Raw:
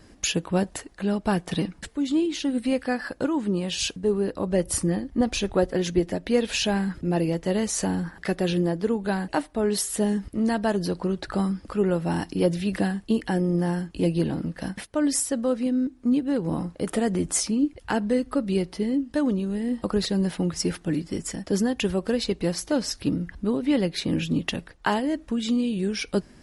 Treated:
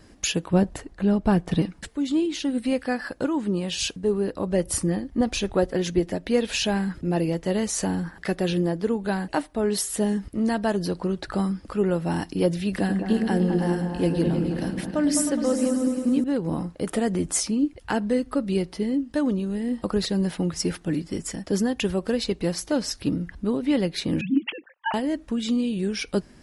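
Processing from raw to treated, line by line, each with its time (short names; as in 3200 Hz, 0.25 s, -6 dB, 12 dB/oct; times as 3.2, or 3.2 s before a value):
0.53–1.62 tilt -2 dB/oct
12.68–16.24 repeats that get brighter 0.104 s, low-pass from 400 Hz, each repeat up 2 oct, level -3 dB
24.21–24.94 sine-wave speech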